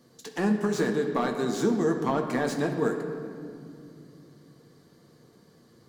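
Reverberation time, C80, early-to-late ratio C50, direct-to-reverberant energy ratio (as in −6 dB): 2.5 s, 7.5 dB, 6.5 dB, 2.5 dB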